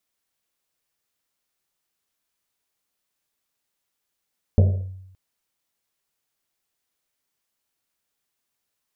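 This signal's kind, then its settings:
drum after Risset length 0.57 s, pitch 94 Hz, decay 0.90 s, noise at 500 Hz, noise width 300 Hz, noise 15%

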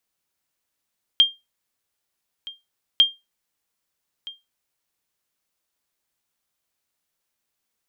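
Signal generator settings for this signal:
ping with an echo 3,200 Hz, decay 0.21 s, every 1.80 s, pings 2, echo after 1.27 s, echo −20.5 dB −6.5 dBFS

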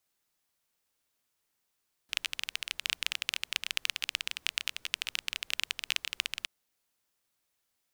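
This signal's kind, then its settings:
rain-like ticks over hiss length 4.37 s, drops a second 18, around 2,800 Hz, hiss −28 dB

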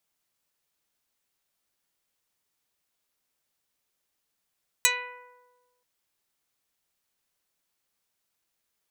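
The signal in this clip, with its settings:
Karplus-Strong string B4, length 0.98 s, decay 1.40 s, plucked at 0.1, dark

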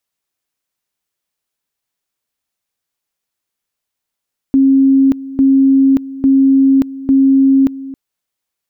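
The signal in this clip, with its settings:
tone at two levels in turn 270 Hz −6 dBFS, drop 17.5 dB, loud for 0.58 s, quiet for 0.27 s, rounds 4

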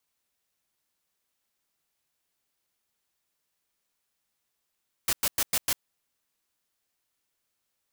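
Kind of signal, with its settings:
noise bursts white, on 0.05 s, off 0.10 s, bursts 5, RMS −25 dBFS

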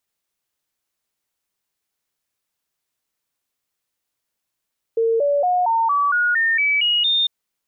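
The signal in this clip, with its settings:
stepped sweep 455 Hz up, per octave 3, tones 10, 0.23 s, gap 0.00 s −15 dBFS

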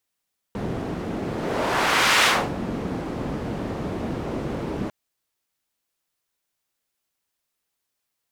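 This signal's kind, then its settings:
pass-by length 4.35 s, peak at 0:01.69, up 1.09 s, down 0.31 s, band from 260 Hz, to 2,200 Hz, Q 0.79, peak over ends 11 dB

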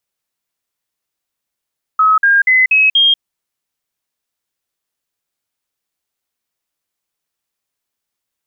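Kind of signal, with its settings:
stepped sweep 1,280 Hz up, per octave 3, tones 5, 0.19 s, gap 0.05 s −7 dBFS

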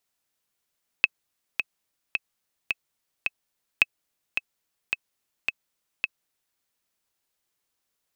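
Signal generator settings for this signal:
click track 108 BPM, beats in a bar 5, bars 2, 2,590 Hz, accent 7.5 dB −3.5 dBFS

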